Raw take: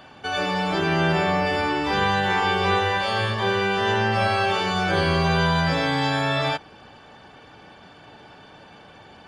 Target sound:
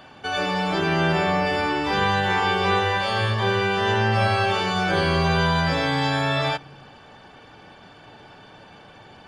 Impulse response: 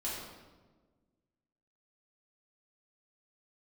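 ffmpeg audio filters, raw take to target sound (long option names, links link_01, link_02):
-filter_complex "[0:a]asplit=2[link_01][link_02];[link_02]asubboost=boost=11:cutoff=160[link_03];[1:a]atrim=start_sample=2205,asetrate=61740,aresample=44100[link_04];[link_03][link_04]afir=irnorm=-1:irlink=0,volume=-25.5dB[link_05];[link_01][link_05]amix=inputs=2:normalize=0"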